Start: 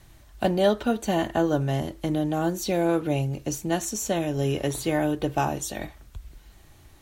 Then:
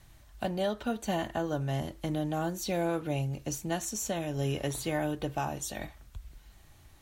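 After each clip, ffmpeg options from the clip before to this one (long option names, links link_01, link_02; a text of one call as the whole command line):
ffmpeg -i in.wav -af "equalizer=frequency=360:width_type=o:width=0.95:gain=-4.5,alimiter=limit=-17dB:level=0:latency=1:release=313,volume=-4dB" out.wav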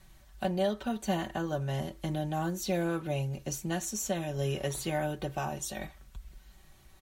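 ffmpeg -i in.wav -af "aecho=1:1:5.3:0.58,volume=-1.5dB" out.wav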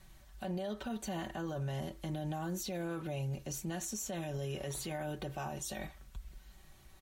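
ffmpeg -i in.wav -af "alimiter=level_in=6dB:limit=-24dB:level=0:latency=1:release=48,volume=-6dB,volume=-1dB" out.wav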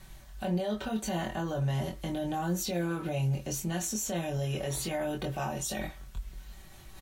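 ffmpeg -i in.wav -filter_complex "[0:a]areverse,acompressor=mode=upward:threshold=-50dB:ratio=2.5,areverse,asplit=2[link_01][link_02];[link_02]adelay=23,volume=-3.5dB[link_03];[link_01][link_03]amix=inputs=2:normalize=0,volume=5dB" out.wav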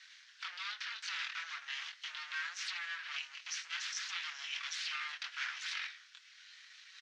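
ffmpeg -i in.wav -af "aeval=exprs='abs(val(0))':channel_layout=same,asuperpass=centerf=3000:order=8:qfactor=0.7,volume=5dB" out.wav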